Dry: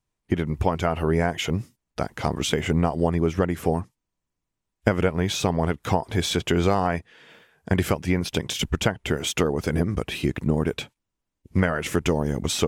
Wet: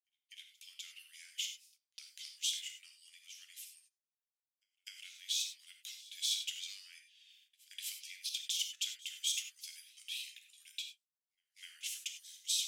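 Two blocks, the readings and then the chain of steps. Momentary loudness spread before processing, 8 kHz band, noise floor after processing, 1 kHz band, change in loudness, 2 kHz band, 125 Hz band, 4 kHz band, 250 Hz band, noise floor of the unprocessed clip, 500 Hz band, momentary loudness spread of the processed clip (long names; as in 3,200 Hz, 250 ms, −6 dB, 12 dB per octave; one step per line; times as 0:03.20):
6 LU, −5.0 dB, below −85 dBFS, below −40 dB, −15.0 dB, −20.0 dB, below −40 dB, −6.0 dB, below −40 dB, −84 dBFS, below −40 dB, 19 LU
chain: Butterworth high-pass 2,900 Hz 36 dB per octave
echo ahead of the sound 251 ms −22.5 dB
reverb whose tail is shaped and stops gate 120 ms flat, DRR 4.5 dB
noise gate −60 dBFS, range −12 dB
level −6.5 dB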